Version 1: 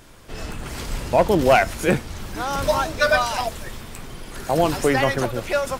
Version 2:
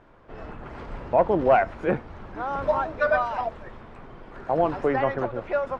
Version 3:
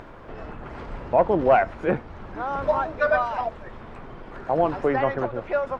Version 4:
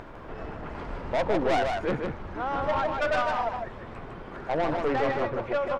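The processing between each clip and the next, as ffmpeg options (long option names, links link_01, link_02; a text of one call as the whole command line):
ffmpeg -i in.wav -af "lowpass=1200,lowshelf=frequency=340:gain=-9.5" out.wav
ffmpeg -i in.wav -af "acompressor=mode=upward:threshold=-34dB:ratio=2.5,volume=1dB" out.wav
ffmpeg -i in.wav -af "aeval=exprs='(tanh(12.6*val(0)+0.3)-tanh(0.3))/12.6':channel_layout=same,aecho=1:1:154:0.596" out.wav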